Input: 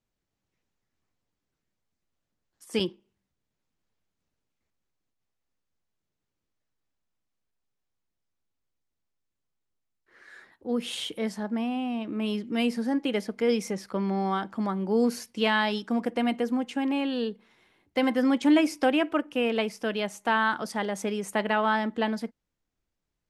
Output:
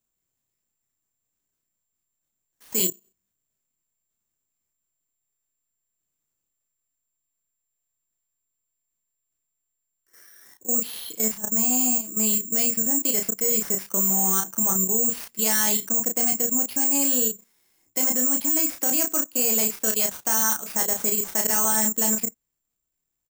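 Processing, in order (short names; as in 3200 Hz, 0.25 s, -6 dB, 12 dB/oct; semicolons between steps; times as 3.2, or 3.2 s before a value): level quantiser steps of 15 dB; careless resampling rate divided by 6×, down none, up zero stuff; doubler 32 ms -4.5 dB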